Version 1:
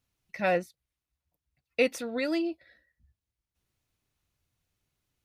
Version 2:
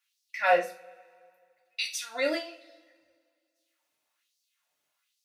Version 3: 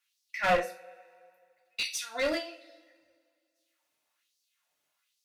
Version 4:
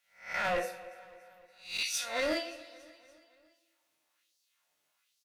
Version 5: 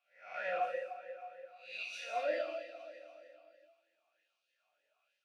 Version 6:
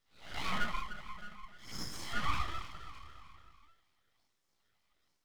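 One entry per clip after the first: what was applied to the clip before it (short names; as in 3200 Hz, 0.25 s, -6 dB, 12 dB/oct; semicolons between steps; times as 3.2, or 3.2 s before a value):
bell 400 Hz -14.5 dB 0.52 oct; LFO high-pass sine 1.2 Hz 400–5000 Hz; two-slope reverb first 0.31 s, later 2.1 s, from -27 dB, DRR -1 dB
one-sided clip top -26.5 dBFS
spectral swells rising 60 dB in 0.39 s; limiter -22 dBFS, peak gain reduction 9.5 dB; feedback echo 0.286 s, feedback 57%, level -21 dB
compressor 1.5:1, threshold -49 dBFS, peak gain reduction 8 dB; non-linear reverb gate 0.26 s flat, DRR 0.5 dB; vowel sweep a-e 3.2 Hz; gain +9.5 dB
full-wave rectifier; gain +4.5 dB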